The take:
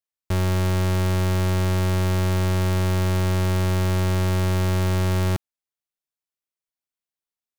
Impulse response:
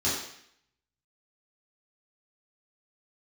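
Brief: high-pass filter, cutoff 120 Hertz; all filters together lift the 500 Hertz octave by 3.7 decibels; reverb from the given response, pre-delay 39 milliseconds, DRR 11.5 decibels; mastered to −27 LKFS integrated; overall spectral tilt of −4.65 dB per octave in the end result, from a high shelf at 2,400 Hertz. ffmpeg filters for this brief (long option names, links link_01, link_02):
-filter_complex "[0:a]highpass=120,equalizer=frequency=500:width_type=o:gain=5,highshelf=frequency=2400:gain=8,asplit=2[link_01][link_02];[1:a]atrim=start_sample=2205,adelay=39[link_03];[link_02][link_03]afir=irnorm=-1:irlink=0,volume=-22dB[link_04];[link_01][link_04]amix=inputs=2:normalize=0,volume=-5dB"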